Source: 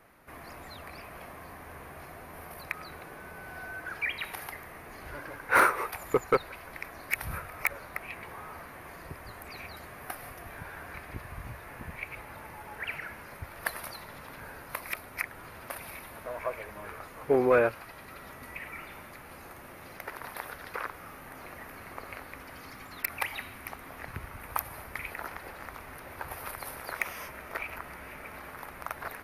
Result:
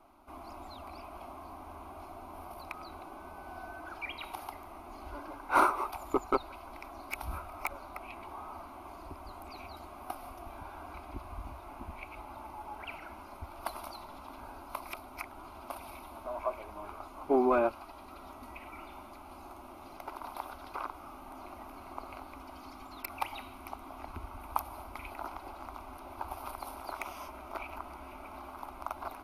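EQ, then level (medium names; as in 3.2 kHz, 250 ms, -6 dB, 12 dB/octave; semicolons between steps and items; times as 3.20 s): low-pass 2.4 kHz 6 dB/octave; peaking EQ 190 Hz -8.5 dB 0.48 oct; static phaser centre 480 Hz, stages 6; +3.5 dB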